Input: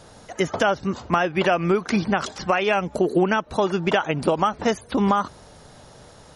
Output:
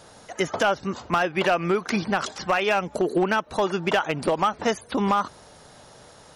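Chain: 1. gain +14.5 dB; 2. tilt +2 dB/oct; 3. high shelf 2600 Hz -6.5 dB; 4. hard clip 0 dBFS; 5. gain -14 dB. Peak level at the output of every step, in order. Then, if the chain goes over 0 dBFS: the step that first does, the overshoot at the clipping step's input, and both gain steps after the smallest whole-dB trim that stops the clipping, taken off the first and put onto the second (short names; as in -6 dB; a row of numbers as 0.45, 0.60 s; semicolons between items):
+8.0, +9.0, +8.0, 0.0, -14.0 dBFS; step 1, 8.0 dB; step 1 +6.5 dB, step 5 -6 dB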